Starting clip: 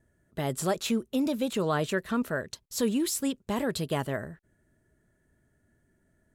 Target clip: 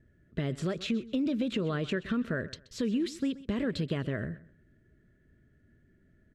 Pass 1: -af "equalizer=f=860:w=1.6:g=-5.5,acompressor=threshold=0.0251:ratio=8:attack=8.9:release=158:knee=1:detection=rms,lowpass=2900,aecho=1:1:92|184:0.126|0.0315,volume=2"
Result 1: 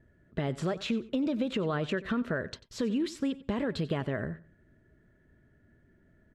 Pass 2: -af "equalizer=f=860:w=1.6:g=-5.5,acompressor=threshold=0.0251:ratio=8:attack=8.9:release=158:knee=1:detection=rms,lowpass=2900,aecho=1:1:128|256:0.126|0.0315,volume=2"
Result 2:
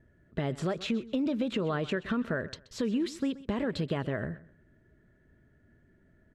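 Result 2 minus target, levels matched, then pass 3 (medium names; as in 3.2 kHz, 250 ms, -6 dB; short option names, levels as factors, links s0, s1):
1 kHz band +5.0 dB
-af "equalizer=f=860:w=1.6:g=-17.5,acompressor=threshold=0.0251:ratio=8:attack=8.9:release=158:knee=1:detection=rms,lowpass=2900,aecho=1:1:128|256:0.126|0.0315,volume=2"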